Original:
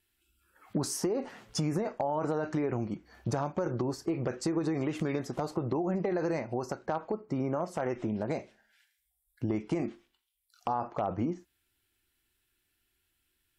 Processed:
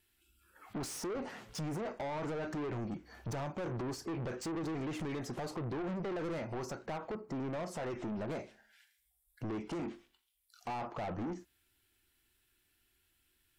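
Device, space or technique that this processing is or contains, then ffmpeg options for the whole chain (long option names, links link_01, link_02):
saturation between pre-emphasis and de-emphasis: -af "highshelf=frequency=4500:gain=9,asoftclip=type=tanh:threshold=-37.5dB,highshelf=frequency=4500:gain=-9,volume=2dB"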